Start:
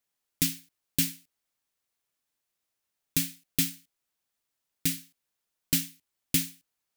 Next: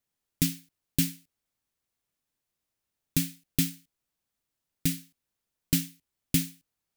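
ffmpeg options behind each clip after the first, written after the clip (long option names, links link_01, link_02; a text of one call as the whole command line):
ffmpeg -i in.wav -af "lowshelf=frequency=320:gain=10,volume=-2.5dB" out.wav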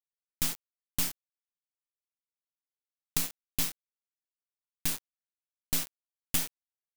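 ffmpeg -i in.wav -af "tiltshelf=frequency=1300:gain=-6.5,aeval=exprs='(tanh(5.01*val(0)+0.55)-tanh(0.55))/5.01':channel_layout=same,acrusher=bits=3:dc=4:mix=0:aa=0.000001,volume=3.5dB" out.wav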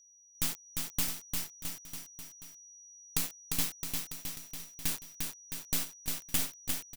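ffmpeg -i in.wav -filter_complex "[0:a]aeval=exprs='val(0)+0.00158*sin(2*PI*5800*n/s)':channel_layout=same,asplit=2[link_01][link_02];[link_02]aecho=0:1:350|665|948.5|1204|1433:0.631|0.398|0.251|0.158|0.1[link_03];[link_01][link_03]amix=inputs=2:normalize=0,volume=-2dB" out.wav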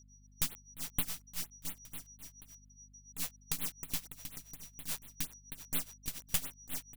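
ffmpeg -i in.wav -af "tremolo=f=7.1:d=0.88,aeval=exprs='val(0)+0.001*(sin(2*PI*50*n/s)+sin(2*PI*2*50*n/s)/2+sin(2*PI*3*50*n/s)/3+sin(2*PI*4*50*n/s)/4+sin(2*PI*5*50*n/s)/5)':channel_layout=same,afftfilt=real='re*(1-between(b*sr/1024,240*pow(6400/240,0.5+0.5*sin(2*PI*4.2*pts/sr))/1.41,240*pow(6400/240,0.5+0.5*sin(2*PI*4.2*pts/sr))*1.41))':imag='im*(1-between(b*sr/1024,240*pow(6400/240,0.5+0.5*sin(2*PI*4.2*pts/sr))/1.41,240*pow(6400/240,0.5+0.5*sin(2*PI*4.2*pts/sr))*1.41))':win_size=1024:overlap=0.75" out.wav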